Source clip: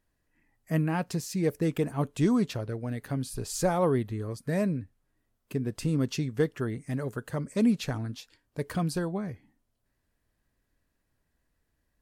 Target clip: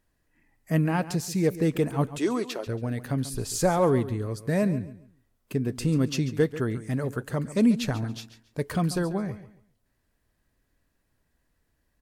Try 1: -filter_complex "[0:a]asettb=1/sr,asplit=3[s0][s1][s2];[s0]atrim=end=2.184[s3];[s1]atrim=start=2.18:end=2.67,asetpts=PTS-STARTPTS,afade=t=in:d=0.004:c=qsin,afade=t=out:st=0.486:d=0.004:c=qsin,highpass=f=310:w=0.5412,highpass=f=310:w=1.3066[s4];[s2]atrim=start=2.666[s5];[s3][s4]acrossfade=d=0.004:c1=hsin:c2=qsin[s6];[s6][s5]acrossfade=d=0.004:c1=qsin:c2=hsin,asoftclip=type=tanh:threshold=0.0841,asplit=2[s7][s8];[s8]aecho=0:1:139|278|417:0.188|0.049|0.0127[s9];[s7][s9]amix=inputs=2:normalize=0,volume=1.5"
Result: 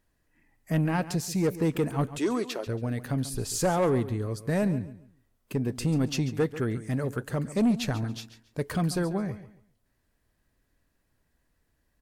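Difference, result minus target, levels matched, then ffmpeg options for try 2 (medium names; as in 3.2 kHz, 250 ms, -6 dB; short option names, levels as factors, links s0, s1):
saturation: distortion +18 dB
-filter_complex "[0:a]asettb=1/sr,asplit=3[s0][s1][s2];[s0]atrim=end=2.184[s3];[s1]atrim=start=2.18:end=2.67,asetpts=PTS-STARTPTS,afade=t=in:d=0.004:c=qsin,afade=t=out:st=0.486:d=0.004:c=qsin,highpass=f=310:w=0.5412,highpass=f=310:w=1.3066[s4];[s2]atrim=start=2.666[s5];[s3][s4]acrossfade=d=0.004:c1=hsin:c2=qsin[s6];[s6][s5]acrossfade=d=0.004:c1=qsin:c2=hsin,asoftclip=type=tanh:threshold=0.316,asplit=2[s7][s8];[s8]aecho=0:1:139|278|417:0.188|0.049|0.0127[s9];[s7][s9]amix=inputs=2:normalize=0,volume=1.5"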